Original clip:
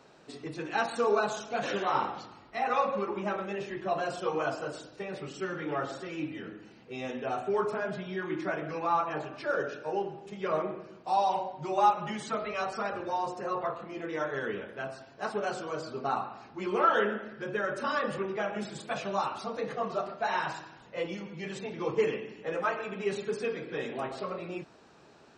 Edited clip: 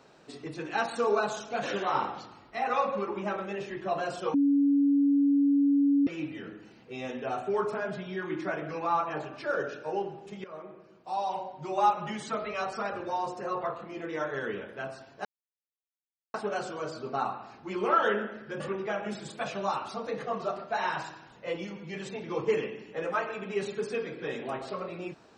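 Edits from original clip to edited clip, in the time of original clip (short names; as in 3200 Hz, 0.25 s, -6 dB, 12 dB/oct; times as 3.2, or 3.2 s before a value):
4.34–6.07 bleep 282 Hz -20 dBFS
10.44–11.97 fade in, from -17 dB
15.25 insert silence 1.09 s
17.51–18.1 cut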